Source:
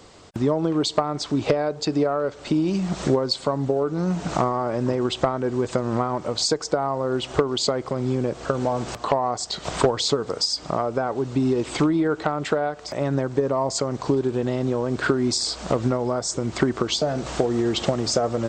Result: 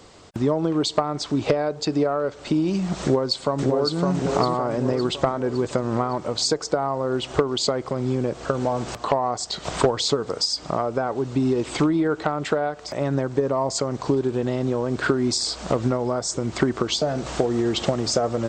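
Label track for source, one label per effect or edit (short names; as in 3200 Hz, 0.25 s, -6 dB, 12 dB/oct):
3.020000	3.980000	echo throw 0.56 s, feedback 50%, level -3 dB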